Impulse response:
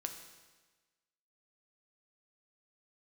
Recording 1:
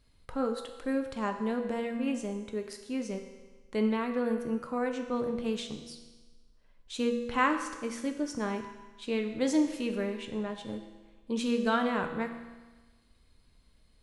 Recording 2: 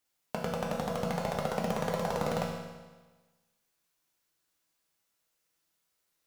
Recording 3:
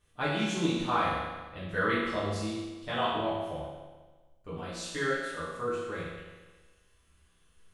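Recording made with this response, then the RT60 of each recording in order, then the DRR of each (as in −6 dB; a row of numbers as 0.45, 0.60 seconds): 1; 1.3, 1.3, 1.3 seconds; 4.5, −2.5, −11.0 decibels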